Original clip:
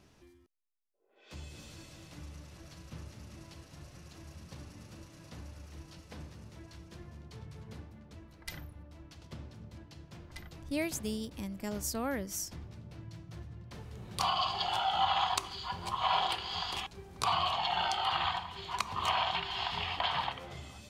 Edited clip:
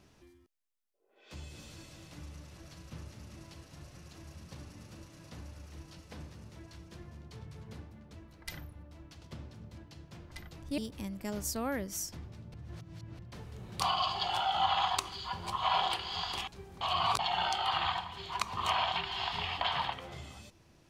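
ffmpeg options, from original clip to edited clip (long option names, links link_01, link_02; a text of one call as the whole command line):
ffmpeg -i in.wav -filter_complex "[0:a]asplit=6[link_01][link_02][link_03][link_04][link_05][link_06];[link_01]atrim=end=10.782[link_07];[link_02]atrim=start=11.168:end=12.932[link_08];[link_03]atrim=start=12.928:end=13.582,asetpts=PTS-STARTPTS,areverse[link_09];[link_04]atrim=start=13.578:end=17.202[link_10];[link_05]atrim=start=17.198:end=17.582,asetpts=PTS-STARTPTS,areverse[link_11];[link_06]atrim=start=17.578[link_12];[link_07][link_08]acrossfade=duration=0.004:curve1=hsin:curve2=hsin[link_13];[link_13][link_09]acrossfade=duration=0.004:curve1=hsin:curve2=hsin[link_14];[link_14][link_10]acrossfade=duration=0.004:curve1=hsin:curve2=hsin[link_15];[link_15][link_11]acrossfade=duration=0.004:curve1=hsin:curve2=hsin[link_16];[link_16][link_12]acrossfade=duration=0.004:curve1=hsin:curve2=hsin" out.wav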